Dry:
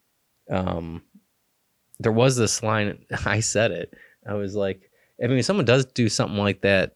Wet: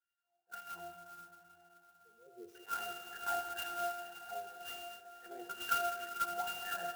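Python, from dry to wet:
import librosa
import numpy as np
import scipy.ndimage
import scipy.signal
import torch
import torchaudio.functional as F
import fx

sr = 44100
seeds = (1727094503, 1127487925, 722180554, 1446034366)

y = fx.spec_expand(x, sr, power=3.4, at=(0.83, 2.55))
y = fx.octave_resonator(y, sr, note='F', decay_s=0.67)
y = fx.filter_lfo_highpass(y, sr, shape='sine', hz=2.0, low_hz=710.0, high_hz=2000.0, q=5.3)
y = fx.rev_plate(y, sr, seeds[0], rt60_s=4.4, hf_ratio=0.85, predelay_ms=0, drr_db=4.0)
y = fx.clock_jitter(y, sr, seeds[1], jitter_ms=0.035)
y = y * librosa.db_to_amplitude(5.5)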